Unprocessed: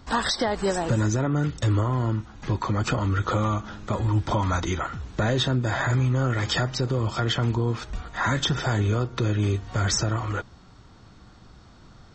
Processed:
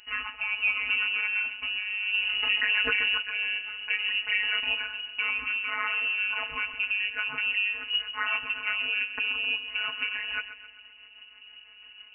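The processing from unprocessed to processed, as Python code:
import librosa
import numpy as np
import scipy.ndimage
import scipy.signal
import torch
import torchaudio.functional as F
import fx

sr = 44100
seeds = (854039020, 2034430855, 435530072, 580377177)

p1 = fx.rider(x, sr, range_db=3, speed_s=0.5)
p2 = fx.rotary_switch(p1, sr, hz=0.65, then_hz=6.0, switch_at_s=5.94)
p3 = p2 + fx.echo_feedback(p2, sr, ms=132, feedback_pct=49, wet_db=-12.5, dry=0)
p4 = fx.robotise(p3, sr, hz=203.0)
p5 = fx.peak_eq(p4, sr, hz=580.0, db=2.5, octaves=0.24)
p6 = fx.freq_invert(p5, sr, carrier_hz=2900)
y = fx.env_flatten(p6, sr, amount_pct=70, at=(2.14, 3.18))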